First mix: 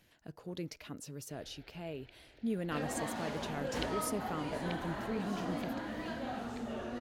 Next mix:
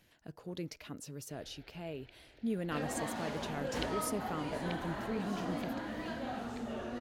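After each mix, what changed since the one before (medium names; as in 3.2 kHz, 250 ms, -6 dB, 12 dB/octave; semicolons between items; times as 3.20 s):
no change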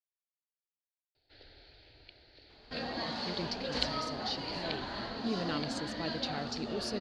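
speech: entry +2.80 s; master: add resonant low-pass 4.5 kHz, resonance Q 8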